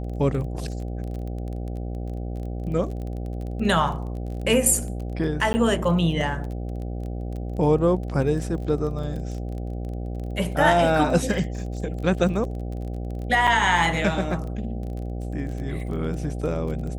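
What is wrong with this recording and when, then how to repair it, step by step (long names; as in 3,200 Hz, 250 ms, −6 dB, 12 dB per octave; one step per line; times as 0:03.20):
mains buzz 60 Hz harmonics 13 −30 dBFS
surface crackle 23 per second −32 dBFS
0:05.53–0:05.54: drop-out 10 ms
0:13.47–0:13.48: drop-out 5.8 ms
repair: click removal
hum removal 60 Hz, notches 13
repair the gap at 0:05.53, 10 ms
repair the gap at 0:13.47, 5.8 ms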